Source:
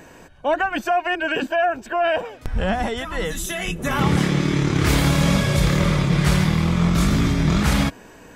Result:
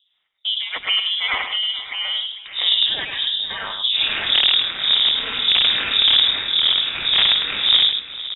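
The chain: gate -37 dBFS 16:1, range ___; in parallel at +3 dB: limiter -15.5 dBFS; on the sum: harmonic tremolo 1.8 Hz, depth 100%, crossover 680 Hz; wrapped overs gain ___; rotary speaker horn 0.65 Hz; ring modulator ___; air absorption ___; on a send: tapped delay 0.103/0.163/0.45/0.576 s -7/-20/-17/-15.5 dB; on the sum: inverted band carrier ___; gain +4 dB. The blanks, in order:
-23 dB, 9.5 dB, 100 Hz, 230 m, 3700 Hz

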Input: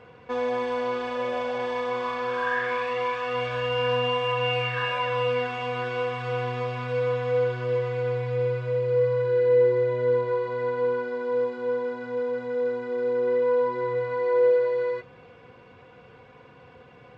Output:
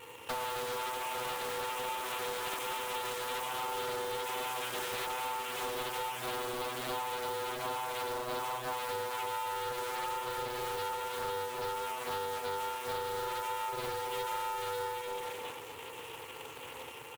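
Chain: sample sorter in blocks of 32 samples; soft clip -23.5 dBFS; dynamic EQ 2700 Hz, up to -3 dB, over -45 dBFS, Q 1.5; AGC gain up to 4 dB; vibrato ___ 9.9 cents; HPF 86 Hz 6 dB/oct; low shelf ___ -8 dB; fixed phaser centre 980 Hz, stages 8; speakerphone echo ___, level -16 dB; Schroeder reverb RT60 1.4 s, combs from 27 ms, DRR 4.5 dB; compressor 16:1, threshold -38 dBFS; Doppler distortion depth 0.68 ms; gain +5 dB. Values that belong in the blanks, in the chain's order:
1.2 Hz, 300 Hz, 0.15 s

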